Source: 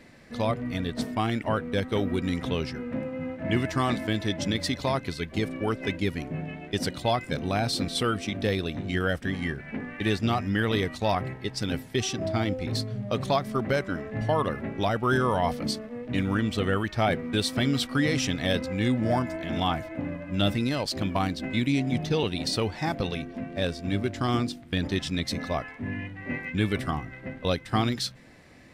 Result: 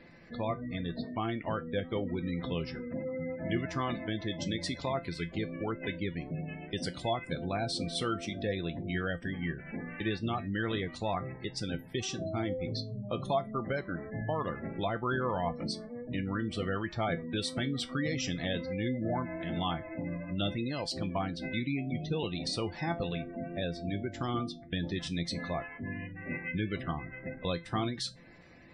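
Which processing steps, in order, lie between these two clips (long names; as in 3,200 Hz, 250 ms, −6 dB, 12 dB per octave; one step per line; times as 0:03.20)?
gate on every frequency bin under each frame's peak −25 dB strong
in parallel at +0.5 dB: downward compressor, threshold −33 dBFS, peak gain reduction 13.5 dB
on the sum: tuned comb filter 170 Hz, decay 0.19 s, harmonics all, mix 70%
level −2.5 dB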